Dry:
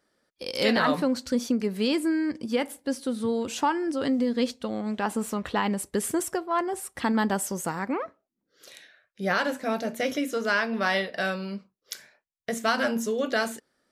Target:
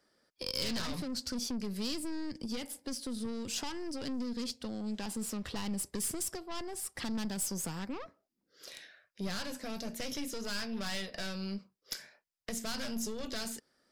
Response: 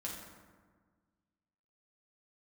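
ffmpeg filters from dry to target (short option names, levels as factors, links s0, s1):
-filter_complex "[0:a]aeval=exprs='(tanh(22.4*val(0)+0.4)-tanh(0.4))/22.4':c=same,acrossover=split=200|3000[s0][s1][s2];[s1]acompressor=threshold=0.00794:ratio=6[s3];[s0][s3][s2]amix=inputs=3:normalize=0,equalizer=f=5000:t=o:w=0.22:g=8"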